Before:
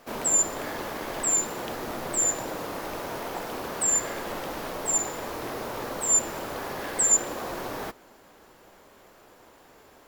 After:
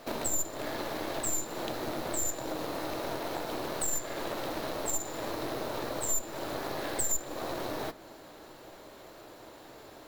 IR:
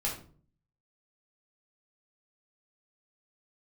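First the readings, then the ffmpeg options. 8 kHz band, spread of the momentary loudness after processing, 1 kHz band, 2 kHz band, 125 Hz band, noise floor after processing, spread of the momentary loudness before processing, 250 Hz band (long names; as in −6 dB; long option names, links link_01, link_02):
−10.0 dB, 19 LU, −4.0 dB, −4.5 dB, −1.5 dB, −51 dBFS, 12 LU, −1.0 dB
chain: -filter_complex "[0:a]aeval=exprs='0.282*(cos(1*acos(clip(val(0)/0.282,-1,1)))-cos(1*PI/2))+0.0631*(cos(4*acos(clip(val(0)/0.282,-1,1)))-cos(4*PI/2))+0.0112*(cos(7*acos(clip(val(0)/0.282,-1,1)))-cos(7*PI/2))':channel_layout=same,equalizer=frequency=125:width_type=o:width=0.33:gain=6,equalizer=frequency=315:width_type=o:width=0.33:gain=7,equalizer=frequency=630:width_type=o:width=0.33:gain=6,equalizer=frequency=4000:width_type=o:width=0.33:gain=8,acompressor=threshold=-38dB:ratio=3,asplit=2[link_01][link_02];[1:a]atrim=start_sample=2205[link_03];[link_02][link_03]afir=irnorm=-1:irlink=0,volume=-17.5dB[link_04];[link_01][link_04]amix=inputs=2:normalize=0,volume=3.5dB"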